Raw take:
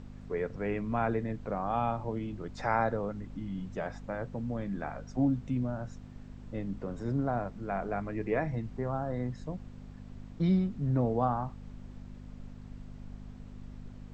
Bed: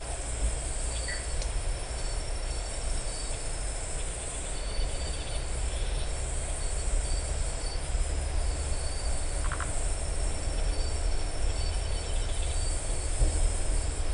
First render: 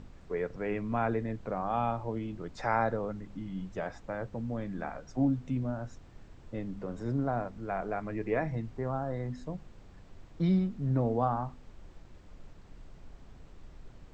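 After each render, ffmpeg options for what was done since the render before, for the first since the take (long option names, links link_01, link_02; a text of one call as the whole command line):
ffmpeg -i in.wav -af "bandreject=frequency=50:width_type=h:width=4,bandreject=frequency=100:width_type=h:width=4,bandreject=frequency=150:width_type=h:width=4,bandreject=frequency=200:width_type=h:width=4,bandreject=frequency=250:width_type=h:width=4" out.wav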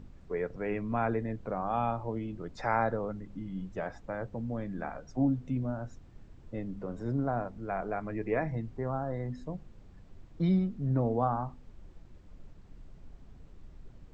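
ffmpeg -i in.wav -af "afftdn=noise_reduction=6:noise_floor=-53" out.wav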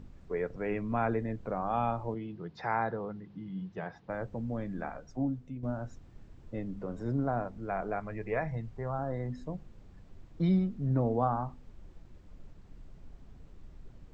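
ffmpeg -i in.wav -filter_complex "[0:a]asettb=1/sr,asplit=3[link_01][link_02][link_03];[link_01]atrim=end=2.144[link_04];[link_02]atrim=start=2.14:end=4.1,asetpts=PTS-STARTPTS,afade=type=in:duration=0.004:curve=qsin,afade=type=out:start_time=1.956:duration=0.004:curve=qsin,highpass=130,equalizer=frequency=160:width_type=q:width=4:gain=6,equalizer=frequency=260:width_type=q:width=4:gain=-9,equalizer=frequency=580:width_type=q:width=4:gain=-8,equalizer=frequency=1300:width_type=q:width=4:gain=-4,equalizer=frequency=2300:width_type=q:width=4:gain=-3,lowpass=frequency=4800:width=0.5412,lowpass=frequency=4800:width=1.3066[link_05];[link_03]atrim=start=4.096[link_06];[link_04][link_05]acrossfade=duration=0.004:curve1=hsin:curve2=qsin[link_07];[link_07][link_06]acrossfade=duration=0.004:curve1=qsin:curve2=hsin,asettb=1/sr,asplit=3[link_08][link_09][link_10];[link_08]atrim=end=8.004[link_11];[link_09]atrim=start=8:end=8.99,asetpts=PTS-STARTPTS,afade=type=in:duration=0.004:curve=qsin,afade=type=out:start_time=0.986:duration=0.004:curve=qsin,equalizer=frequency=290:width_type=o:width=0.77:gain=-9.5[link_12];[link_10]atrim=start=8.986[link_13];[link_11][link_12]acrossfade=duration=0.004:curve1=hsin:curve2=qsin[link_14];[link_14][link_13]acrossfade=duration=0.004:curve1=qsin:curve2=hsin,asplit=2[link_15][link_16];[link_15]atrim=end=5.63,asetpts=PTS-STARTPTS,afade=type=out:start_time=4.77:duration=0.86:silence=0.281838[link_17];[link_16]atrim=start=5.63,asetpts=PTS-STARTPTS,afade=type=in:duration=0.004:curve=hsin:silence=0.281838[link_18];[link_17][link_18]concat=n=2:v=0:a=1" out.wav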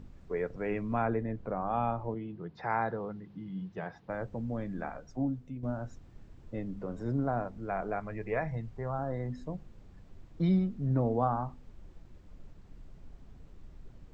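ffmpeg -i in.wav -filter_complex "[0:a]asettb=1/sr,asplit=3[link_01][link_02][link_03];[link_01]atrim=end=1.024[link_04];[link_02]atrim=start=1.02:end=2.7,asetpts=PTS-STARTPTS,afade=type=in:duration=0.004:curve=qsin,afade=type=out:start_time=1.676:duration=0.004:curve=qsin,highshelf=frequency=3700:gain=-10[link_05];[link_03]atrim=start=2.696[link_06];[link_04][link_05]acrossfade=duration=0.004:curve1=hsin:curve2=qsin[link_07];[link_07][link_06]acrossfade=duration=0.004:curve1=qsin:curve2=hsin" out.wav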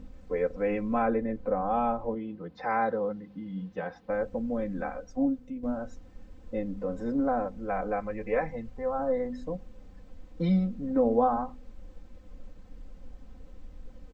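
ffmpeg -i in.wav -af "equalizer=frequency=520:width=5.3:gain=7,aecho=1:1:3.9:0.96" out.wav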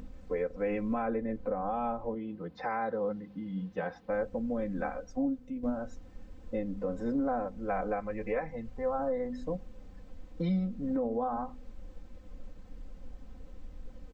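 ffmpeg -i in.wav -af "alimiter=limit=-23dB:level=0:latency=1:release=330,acompressor=mode=upward:threshold=-46dB:ratio=2.5" out.wav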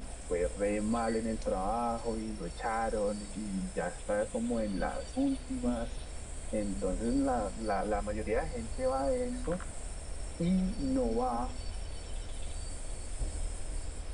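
ffmpeg -i in.wav -i bed.wav -filter_complex "[1:a]volume=-11dB[link_01];[0:a][link_01]amix=inputs=2:normalize=0" out.wav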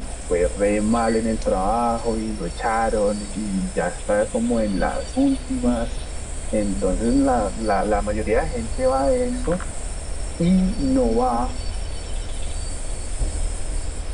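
ffmpeg -i in.wav -af "volume=12dB" out.wav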